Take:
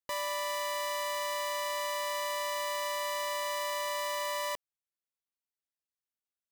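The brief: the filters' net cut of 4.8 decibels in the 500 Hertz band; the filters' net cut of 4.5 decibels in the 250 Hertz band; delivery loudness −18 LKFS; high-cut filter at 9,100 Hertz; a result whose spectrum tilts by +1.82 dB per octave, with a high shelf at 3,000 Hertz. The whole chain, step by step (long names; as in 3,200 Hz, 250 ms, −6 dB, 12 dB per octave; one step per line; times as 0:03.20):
low-pass filter 9,100 Hz
parametric band 250 Hz −4 dB
parametric band 500 Hz −5 dB
high-shelf EQ 3,000 Hz −4.5 dB
level +18 dB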